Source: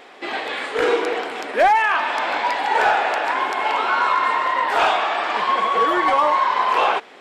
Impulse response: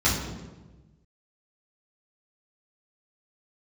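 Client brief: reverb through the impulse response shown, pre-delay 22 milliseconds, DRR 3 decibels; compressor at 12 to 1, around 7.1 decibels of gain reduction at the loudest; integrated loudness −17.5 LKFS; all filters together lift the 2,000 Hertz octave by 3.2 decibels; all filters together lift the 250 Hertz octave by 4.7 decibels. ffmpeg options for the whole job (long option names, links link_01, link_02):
-filter_complex "[0:a]equalizer=frequency=250:width_type=o:gain=7,equalizer=frequency=2000:width_type=o:gain=4,acompressor=threshold=-18dB:ratio=12,asplit=2[link_01][link_02];[1:a]atrim=start_sample=2205,adelay=22[link_03];[link_02][link_03]afir=irnorm=-1:irlink=0,volume=-18dB[link_04];[link_01][link_04]amix=inputs=2:normalize=0,volume=2.5dB"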